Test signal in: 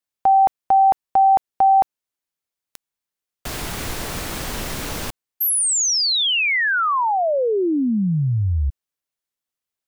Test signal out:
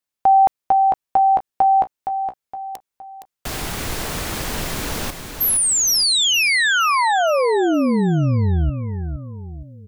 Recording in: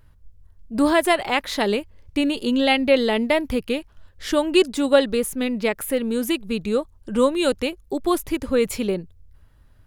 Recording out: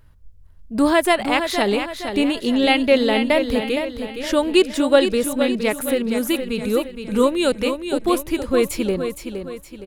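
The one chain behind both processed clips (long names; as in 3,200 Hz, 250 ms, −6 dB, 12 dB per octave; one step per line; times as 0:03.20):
repeating echo 466 ms, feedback 43%, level −8 dB
level +1.5 dB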